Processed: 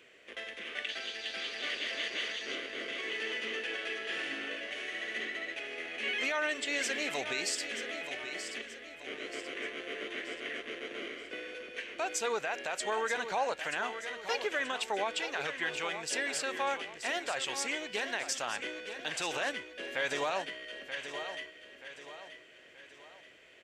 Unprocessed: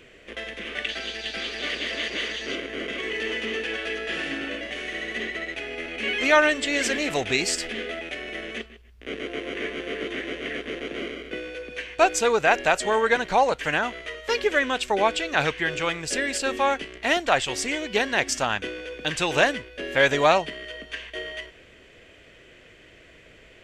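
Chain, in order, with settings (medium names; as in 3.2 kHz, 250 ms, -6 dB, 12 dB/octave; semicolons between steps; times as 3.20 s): high-pass 530 Hz 6 dB/octave; peak limiter -16 dBFS, peak gain reduction 11.5 dB; feedback delay 930 ms, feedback 43%, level -10 dB; trim -6.5 dB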